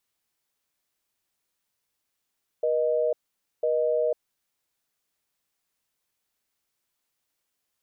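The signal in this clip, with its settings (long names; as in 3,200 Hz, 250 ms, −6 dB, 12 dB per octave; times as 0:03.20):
call progress tone busy tone, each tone −24 dBFS 1.51 s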